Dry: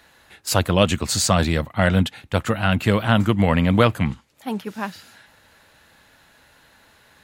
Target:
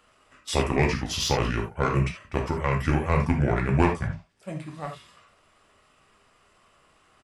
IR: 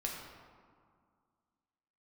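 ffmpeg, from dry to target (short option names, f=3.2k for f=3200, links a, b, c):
-filter_complex "[0:a]asetrate=32097,aresample=44100,atempo=1.37395,aeval=exprs='0.891*(cos(1*acos(clip(val(0)/0.891,-1,1)))-cos(1*PI/2))+0.0355*(cos(7*acos(clip(val(0)/0.891,-1,1)))-cos(7*PI/2))':c=same[a];[1:a]atrim=start_sample=2205,atrim=end_sample=3969[b];[a][b]afir=irnorm=-1:irlink=0,volume=-3.5dB"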